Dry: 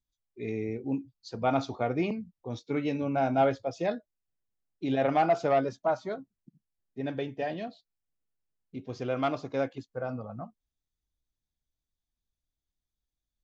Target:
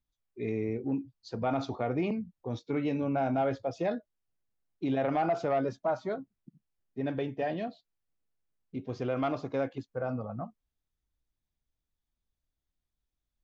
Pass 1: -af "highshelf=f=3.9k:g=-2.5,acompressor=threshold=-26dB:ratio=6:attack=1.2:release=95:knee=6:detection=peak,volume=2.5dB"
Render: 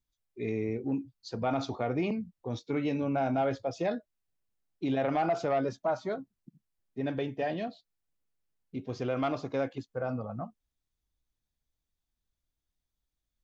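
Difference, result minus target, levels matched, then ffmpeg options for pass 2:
8000 Hz band +5.0 dB
-af "highshelf=f=3.9k:g=-9.5,acompressor=threshold=-26dB:ratio=6:attack=1.2:release=95:knee=6:detection=peak,volume=2.5dB"

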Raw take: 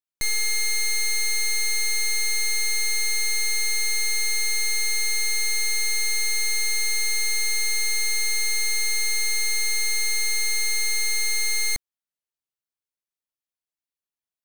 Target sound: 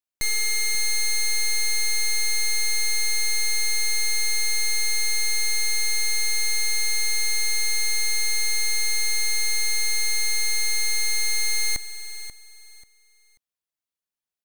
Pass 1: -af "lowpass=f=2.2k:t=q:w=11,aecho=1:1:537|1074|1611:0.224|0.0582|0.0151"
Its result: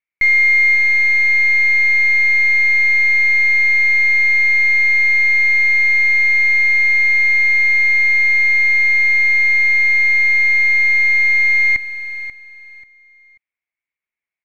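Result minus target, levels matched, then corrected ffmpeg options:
2000 Hz band +7.0 dB
-af "aecho=1:1:537|1074|1611:0.224|0.0582|0.0151"

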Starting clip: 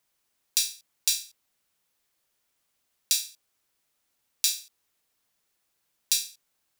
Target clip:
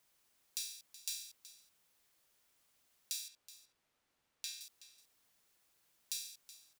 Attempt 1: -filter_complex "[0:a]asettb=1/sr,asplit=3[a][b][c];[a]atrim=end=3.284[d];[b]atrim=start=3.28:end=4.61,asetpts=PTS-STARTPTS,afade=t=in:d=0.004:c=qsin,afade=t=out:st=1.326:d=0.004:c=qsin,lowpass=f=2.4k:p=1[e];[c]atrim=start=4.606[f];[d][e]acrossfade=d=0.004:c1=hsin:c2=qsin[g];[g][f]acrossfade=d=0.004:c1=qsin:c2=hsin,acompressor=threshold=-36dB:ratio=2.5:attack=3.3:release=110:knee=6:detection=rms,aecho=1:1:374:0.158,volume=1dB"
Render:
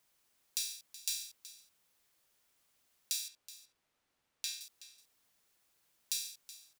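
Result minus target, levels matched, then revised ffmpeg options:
compressor: peak gain reduction -5 dB
-filter_complex "[0:a]asettb=1/sr,asplit=3[a][b][c];[a]atrim=end=3.284[d];[b]atrim=start=3.28:end=4.61,asetpts=PTS-STARTPTS,afade=t=in:d=0.004:c=qsin,afade=t=out:st=1.326:d=0.004:c=qsin,lowpass=f=2.4k:p=1[e];[c]atrim=start=4.606[f];[d][e]acrossfade=d=0.004:c1=hsin:c2=qsin[g];[g][f]acrossfade=d=0.004:c1=qsin:c2=hsin,acompressor=threshold=-44dB:ratio=2.5:attack=3.3:release=110:knee=6:detection=rms,aecho=1:1:374:0.158,volume=1dB"

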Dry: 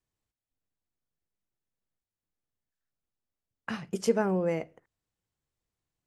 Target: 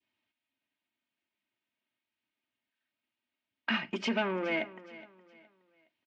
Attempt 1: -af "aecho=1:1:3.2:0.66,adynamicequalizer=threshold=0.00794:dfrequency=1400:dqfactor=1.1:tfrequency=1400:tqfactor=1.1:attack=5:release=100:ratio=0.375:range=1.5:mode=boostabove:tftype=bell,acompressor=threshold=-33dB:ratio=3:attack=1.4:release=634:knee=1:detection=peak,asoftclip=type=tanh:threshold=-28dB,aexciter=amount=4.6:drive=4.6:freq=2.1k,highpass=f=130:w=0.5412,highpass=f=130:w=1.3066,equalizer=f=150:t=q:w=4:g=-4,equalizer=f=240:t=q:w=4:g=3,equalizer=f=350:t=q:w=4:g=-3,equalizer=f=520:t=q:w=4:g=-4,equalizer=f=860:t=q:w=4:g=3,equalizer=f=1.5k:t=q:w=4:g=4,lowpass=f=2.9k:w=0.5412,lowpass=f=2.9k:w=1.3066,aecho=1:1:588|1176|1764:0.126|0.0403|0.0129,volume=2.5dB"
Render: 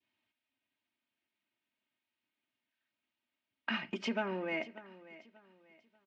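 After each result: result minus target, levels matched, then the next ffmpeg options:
echo 0.171 s late; compressor: peak gain reduction +7 dB
-af "aecho=1:1:3.2:0.66,adynamicequalizer=threshold=0.00794:dfrequency=1400:dqfactor=1.1:tfrequency=1400:tqfactor=1.1:attack=5:release=100:ratio=0.375:range=1.5:mode=boostabove:tftype=bell,acompressor=threshold=-33dB:ratio=3:attack=1.4:release=634:knee=1:detection=peak,asoftclip=type=tanh:threshold=-28dB,aexciter=amount=4.6:drive=4.6:freq=2.1k,highpass=f=130:w=0.5412,highpass=f=130:w=1.3066,equalizer=f=150:t=q:w=4:g=-4,equalizer=f=240:t=q:w=4:g=3,equalizer=f=350:t=q:w=4:g=-3,equalizer=f=520:t=q:w=4:g=-4,equalizer=f=860:t=q:w=4:g=3,equalizer=f=1.5k:t=q:w=4:g=4,lowpass=f=2.9k:w=0.5412,lowpass=f=2.9k:w=1.3066,aecho=1:1:417|834|1251:0.126|0.0403|0.0129,volume=2.5dB"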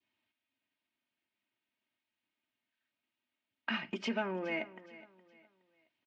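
compressor: peak gain reduction +7 dB
-af "aecho=1:1:3.2:0.66,adynamicequalizer=threshold=0.00794:dfrequency=1400:dqfactor=1.1:tfrequency=1400:tqfactor=1.1:attack=5:release=100:ratio=0.375:range=1.5:mode=boostabove:tftype=bell,acompressor=threshold=-22.5dB:ratio=3:attack=1.4:release=634:knee=1:detection=peak,asoftclip=type=tanh:threshold=-28dB,aexciter=amount=4.6:drive=4.6:freq=2.1k,highpass=f=130:w=0.5412,highpass=f=130:w=1.3066,equalizer=f=150:t=q:w=4:g=-4,equalizer=f=240:t=q:w=4:g=3,equalizer=f=350:t=q:w=4:g=-3,equalizer=f=520:t=q:w=4:g=-4,equalizer=f=860:t=q:w=4:g=3,equalizer=f=1.5k:t=q:w=4:g=4,lowpass=f=2.9k:w=0.5412,lowpass=f=2.9k:w=1.3066,aecho=1:1:417|834|1251:0.126|0.0403|0.0129,volume=2.5dB"

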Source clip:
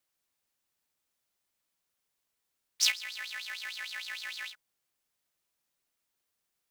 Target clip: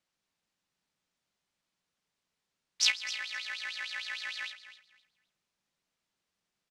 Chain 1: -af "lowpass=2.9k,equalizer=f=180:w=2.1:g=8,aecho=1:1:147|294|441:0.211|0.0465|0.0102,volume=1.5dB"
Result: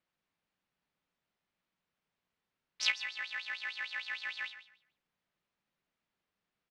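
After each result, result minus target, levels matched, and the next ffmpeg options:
echo 0.112 s early; 8000 Hz band -7.0 dB
-af "lowpass=2.9k,equalizer=f=180:w=2.1:g=8,aecho=1:1:259|518|777:0.211|0.0465|0.0102,volume=1.5dB"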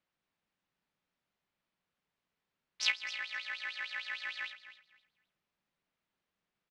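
8000 Hz band -7.0 dB
-af "lowpass=6.1k,equalizer=f=180:w=2.1:g=8,aecho=1:1:259|518|777:0.211|0.0465|0.0102,volume=1.5dB"

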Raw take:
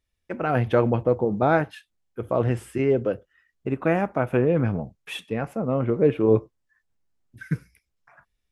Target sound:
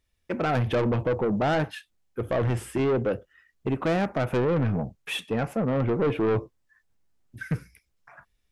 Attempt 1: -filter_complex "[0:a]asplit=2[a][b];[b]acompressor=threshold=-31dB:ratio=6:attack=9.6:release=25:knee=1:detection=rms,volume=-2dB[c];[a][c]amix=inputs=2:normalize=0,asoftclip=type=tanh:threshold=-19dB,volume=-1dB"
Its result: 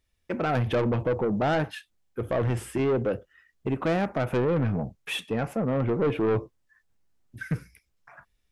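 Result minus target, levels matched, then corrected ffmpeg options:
compressor: peak gain reduction +6.5 dB
-filter_complex "[0:a]asplit=2[a][b];[b]acompressor=threshold=-23.5dB:ratio=6:attack=9.6:release=25:knee=1:detection=rms,volume=-2dB[c];[a][c]amix=inputs=2:normalize=0,asoftclip=type=tanh:threshold=-19dB,volume=-1dB"

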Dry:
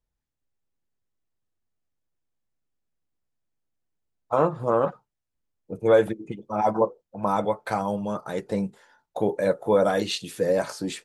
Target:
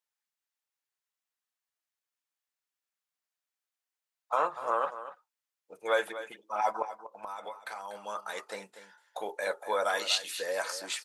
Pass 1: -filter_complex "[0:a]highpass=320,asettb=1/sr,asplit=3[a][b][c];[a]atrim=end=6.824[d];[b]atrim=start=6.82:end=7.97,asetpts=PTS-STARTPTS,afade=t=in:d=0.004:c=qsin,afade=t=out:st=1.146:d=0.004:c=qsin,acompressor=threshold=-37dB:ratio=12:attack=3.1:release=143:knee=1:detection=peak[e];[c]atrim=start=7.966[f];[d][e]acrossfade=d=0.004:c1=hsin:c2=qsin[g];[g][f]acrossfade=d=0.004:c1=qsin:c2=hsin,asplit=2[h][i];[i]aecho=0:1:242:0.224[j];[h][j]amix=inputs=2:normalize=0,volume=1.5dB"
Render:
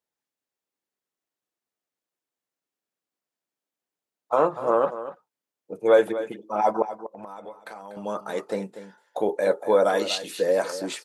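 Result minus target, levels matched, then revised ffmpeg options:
250 Hz band +10.0 dB
-filter_complex "[0:a]highpass=1.1k,asettb=1/sr,asplit=3[a][b][c];[a]atrim=end=6.824[d];[b]atrim=start=6.82:end=7.97,asetpts=PTS-STARTPTS,afade=t=in:d=0.004:c=qsin,afade=t=out:st=1.146:d=0.004:c=qsin,acompressor=threshold=-37dB:ratio=12:attack=3.1:release=143:knee=1:detection=peak[e];[c]atrim=start=7.966[f];[d][e]acrossfade=d=0.004:c1=hsin:c2=qsin[g];[g][f]acrossfade=d=0.004:c1=qsin:c2=hsin,asplit=2[h][i];[i]aecho=0:1:242:0.224[j];[h][j]amix=inputs=2:normalize=0,volume=1.5dB"

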